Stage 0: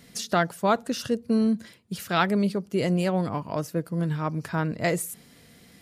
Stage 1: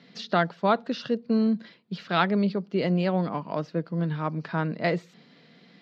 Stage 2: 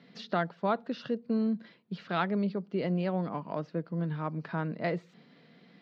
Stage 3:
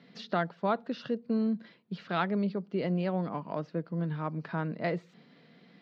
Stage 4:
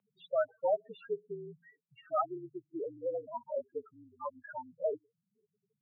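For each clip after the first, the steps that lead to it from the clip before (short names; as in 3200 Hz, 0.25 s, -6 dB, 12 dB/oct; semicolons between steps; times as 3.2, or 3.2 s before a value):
elliptic band-pass 160–4300 Hz, stop band 40 dB
high shelf 4000 Hz -10 dB; in parallel at -2 dB: compressor, threshold -32 dBFS, peak gain reduction 15 dB; on the sum: gain -7.5 dB
nothing audible
loudest bins only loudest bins 4; mistuned SSB -56 Hz 520–3400 Hz; gain +5 dB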